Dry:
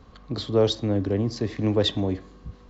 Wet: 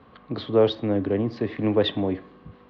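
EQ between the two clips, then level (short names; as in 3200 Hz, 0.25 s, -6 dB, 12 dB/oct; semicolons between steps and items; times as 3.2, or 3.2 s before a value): HPF 110 Hz 12 dB/oct; LPF 3200 Hz 24 dB/oct; low shelf 210 Hz -5 dB; +3.0 dB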